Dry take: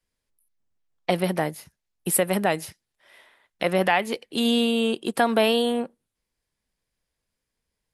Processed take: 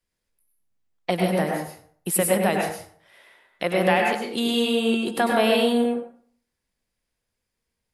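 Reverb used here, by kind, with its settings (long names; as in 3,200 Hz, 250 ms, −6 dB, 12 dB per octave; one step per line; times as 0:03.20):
dense smooth reverb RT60 0.54 s, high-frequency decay 0.65×, pre-delay 85 ms, DRR 0 dB
level −1.5 dB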